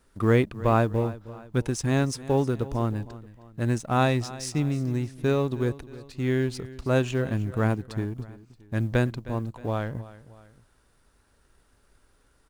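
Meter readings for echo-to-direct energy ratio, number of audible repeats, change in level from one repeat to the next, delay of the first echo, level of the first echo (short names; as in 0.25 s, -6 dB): -16.5 dB, 2, -6.5 dB, 0.313 s, -17.5 dB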